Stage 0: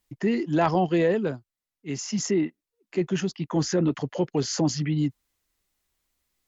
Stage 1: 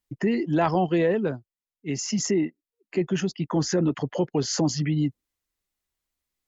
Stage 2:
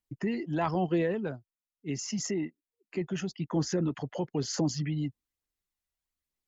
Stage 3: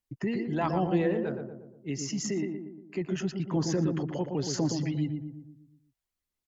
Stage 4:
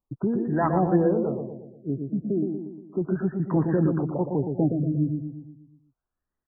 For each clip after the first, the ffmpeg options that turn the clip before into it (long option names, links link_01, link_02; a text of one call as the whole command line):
ffmpeg -i in.wav -filter_complex "[0:a]asplit=2[link_01][link_02];[link_02]acompressor=threshold=-29dB:ratio=6,volume=2dB[link_03];[link_01][link_03]amix=inputs=2:normalize=0,afftdn=noise_reduction=12:noise_floor=-44,volume=-3dB" out.wav
ffmpeg -i in.wav -af "aphaser=in_gain=1:out_gain=1:delay=1.6:decay=0.29:speed=1.1:type=triangular,volume=-7dB" out.wav
ffmpeg -i in.wav -filter_complex "[0:a]asplit=2[link_01][link_02];[link_02]adelay=118,lowpass=frequency=1100:poles=1,volume=-4.5dB,asplit=2[link_03][link_04];[link_04]adelay=118,lowpass=frequency=1100:poles=1,volume=0.54,asplit=2[link_05][link_06];[link_06]adelay=118,lowpass=frequency=1100:poles=1,volume=0.54,asplit=2[link_07][link_08];[link_08]adelay=118,lowpass=frequency=1100:poles=1,volume=0.54,asplit=2[link_09][link_10];[link_10]adelay=118,lowpass=frequency=1100:poles=1,volume=0.54,asplit=2[link_11][link_12];[link_12]adelay=118,lowpass=frequency=1100:poles=1,volume=0.54,asplit=2[link_13][link_14];[link_14]adelay=118,lowpass=frequency=1100:poles=1,volume=0.54[link_15];[link_01][link_03][link_05][link_07][link_09][link_11][link_13][link_15]amix=inputs=8:normalize=0" out.wav
ffmpeg -i in.wav -af "afftfilt=real='re*lt(b*sr/1024,700*pow(2000/700,0.5+0.5*sin(2*PI*0.35*pts/sr)))':imag='im*lt(b*sr/1024,700*pow(2000/700,0.5+0.5*sin(2*PI*0.35*pts/sr)))':win_size=1024:overlap=0.75,volume=5.5dB" out.wav